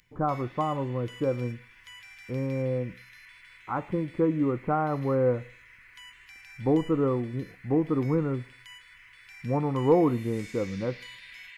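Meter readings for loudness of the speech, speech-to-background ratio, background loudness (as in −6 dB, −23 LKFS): −28.5 LKFS, 19.5 dB, −48.0 LKFS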